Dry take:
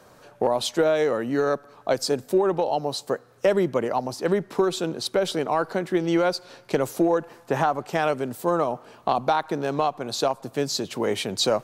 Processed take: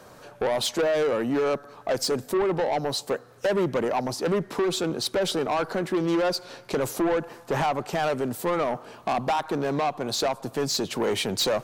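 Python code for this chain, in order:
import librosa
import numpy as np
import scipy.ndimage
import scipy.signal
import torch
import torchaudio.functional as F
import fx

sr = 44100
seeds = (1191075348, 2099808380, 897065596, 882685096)

y = 10.0 ** (-23.5 / 20.0) * np.tanh(x / 10.0 ** (-23.5 / 20.0))
y = y * 10.0 ** (3.5 / 20.0)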